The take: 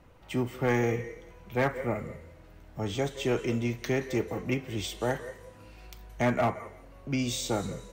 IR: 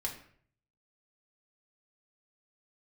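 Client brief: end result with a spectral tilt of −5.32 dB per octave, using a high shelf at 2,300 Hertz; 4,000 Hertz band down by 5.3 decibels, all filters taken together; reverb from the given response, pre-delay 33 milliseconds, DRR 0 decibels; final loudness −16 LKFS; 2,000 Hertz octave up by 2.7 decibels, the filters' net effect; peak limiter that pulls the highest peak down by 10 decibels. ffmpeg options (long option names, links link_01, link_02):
-filter_complex "[0:a]equalizer=frequency=2000:width_type=o:gain=7,highshelf=frequency=2300:gain=-6,equalizer=frequency=4000:width_type=o:gain=-4,alimiter=level_in=2dB:limit=-24dB:level=0:latency=1,volume=-2dB,asplit=2[link_01][link_02];[1:a]atrim=start_sample=2205,adelay=33[link_03];[link_02][link_03]afir=irnorm=-1:irlink=0,volume=-1.5dB[link_04];[link_01][link_04]amix=inputs=2:normalize=0,volume=17dB"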